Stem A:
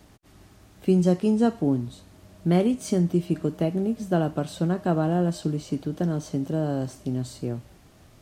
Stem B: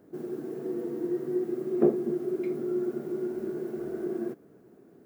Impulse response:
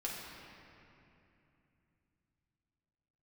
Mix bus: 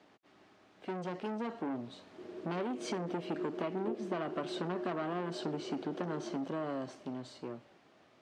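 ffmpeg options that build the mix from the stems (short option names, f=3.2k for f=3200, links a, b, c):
-filter_complex "[0:a]asoftclip=type=tanh:threshold=-26dB,volume=-4.5dB[a];[1:a]adelay=2050,volume=-15dB[b];[a][b]amix=inputs=2:normalize=0,dynaudnorm=f=210:g=17:m=7dB,highpass=320,lowpass=3.5k,acompressor=threshold=-32dB:ratio=6"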